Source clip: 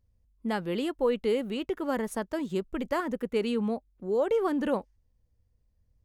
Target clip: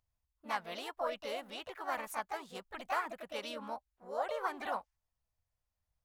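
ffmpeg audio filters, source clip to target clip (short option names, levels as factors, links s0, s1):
-filter_complex "[0:a]asplit=4[s0][s1][s2][s3];[s1]asetrate=52444,aresample=44100,atempo=0.840896,volume=0.282[s4];[s2]asetrate=55563,aresample=44100,atempo=0.793701,volume=0.251[s5];[s3]asetrate=58866,aresample=44100,atempo=0.749154,volume=0.562[s6];[s0][s4][s5][s6]amix=inputs=4:normalize=0,lowshelf=f=570:t=q:w=1.5:g=-14,volume=0.501"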